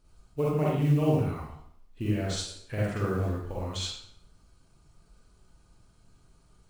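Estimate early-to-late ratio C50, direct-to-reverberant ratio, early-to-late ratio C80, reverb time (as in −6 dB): −2.0 dB, −7.0 dB, 3.0 dB, 0.65 s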